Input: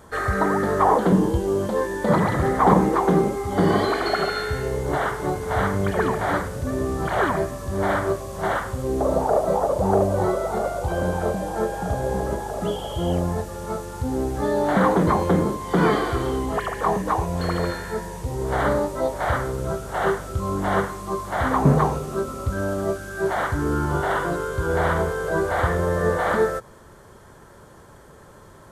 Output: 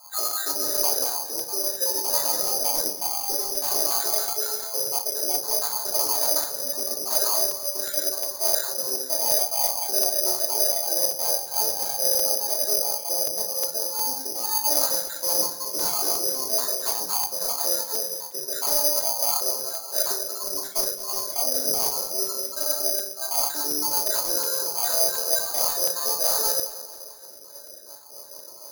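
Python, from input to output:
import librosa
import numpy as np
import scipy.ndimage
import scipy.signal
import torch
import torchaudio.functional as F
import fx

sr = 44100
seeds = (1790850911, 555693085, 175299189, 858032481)

p1 = fx.spec_dropout(x, sr, seeds[0], share_pct=56)
p2 = fx.over_compress(p1, sr, threshold_db=-28.0, ratio=-1.0)
p3 = p1 + (p2 * 10.0 ** (1.0 / 20.0))
p4 = fx.ladder_bandpass(p3, sr, hz=740.0, resonance_pct=30)
p5 = 10.0 ** (-29.0 / 20.0) * np.tanh(p4 / 10.0 ** (-29.0 / 20.0))
p6 = fx.air_absorb(p5, sr, metres=280.0)
p7 = p6 + fx.echo_feedback(p6, sr, ms=218, feedback_pct=55, wet_db=-16.0, dry=0)
p8 = fx.room_shoebox(p7, sr, seeds[1], volume_m3=200.0, walls='furnished', distance_m=2.8)
p9 = (np.kron(p8[::8], np.eye(8)[0]) * 8)[:len(p8)]
p10 = fx.buffer_crackle(p9, sr, first_s=0.31, period_s=0.36, block=128, kind='repeat')
y = p10 * 10.0 ** (-2.5 / 20.0)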